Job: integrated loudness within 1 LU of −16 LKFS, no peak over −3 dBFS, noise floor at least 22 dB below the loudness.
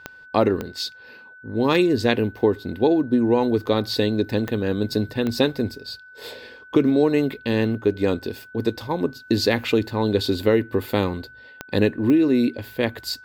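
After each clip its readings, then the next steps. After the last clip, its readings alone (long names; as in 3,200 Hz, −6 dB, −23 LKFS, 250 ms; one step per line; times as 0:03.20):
number of clicks 6; interfering tone 1,500 Hz; level of the tone −43 dBFS; integrated loudness −22.0 LKFS; sample peak −4.0 dBFS; target loudness −16.0 LKFS
→ click removal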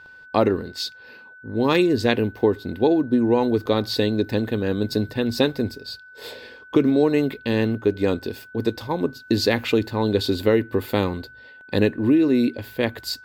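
number of clicks 0; interfering tone 1,500 Hz; level of the tone −43 dBFS
→ notch filter 1,500 Hz, Q 30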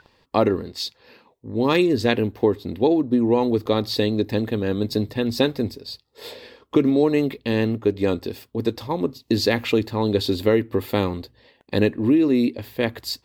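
interfering tone none found; integrated loudness −22.0 LKFS; sample peak −4.0 dBFS; target loudness −16.0 LKFS
→ level +6 dB
brickwall limiter −3 dBFS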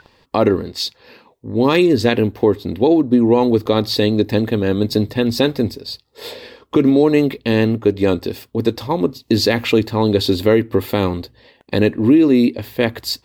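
integrated loudness −16.5 LKFS; sample peak −3.0 dBFS; background noise floor −58 dBFS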